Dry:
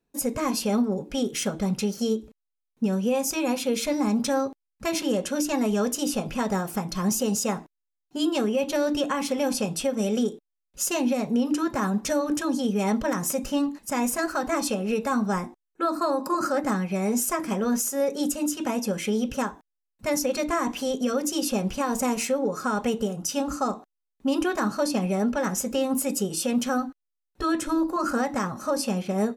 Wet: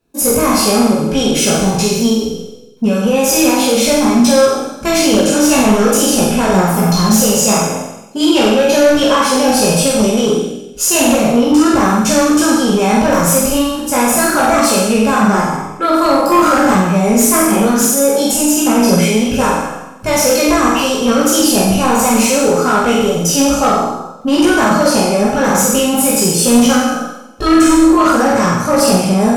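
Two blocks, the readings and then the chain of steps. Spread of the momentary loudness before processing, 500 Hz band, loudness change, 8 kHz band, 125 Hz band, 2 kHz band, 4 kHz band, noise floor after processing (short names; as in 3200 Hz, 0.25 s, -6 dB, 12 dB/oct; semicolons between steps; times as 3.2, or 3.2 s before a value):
4 LU, +14.0 dB, +14.5 dB, +16.5 dB, +15.0 dB, +15.5 dB, +16.5 dB, -30 dBFS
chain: spectral trails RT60 0.95 s; notch 1900 Hz, Q 8.2; chorus voices 2, 0.45 Hz, delay 18 ms, depth 1.5 ms; sine folder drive 6 dB, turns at -12 dBFS; on a send: flutter echo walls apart 8 m, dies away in 0.58 s; on the sum: gain +4.5 dB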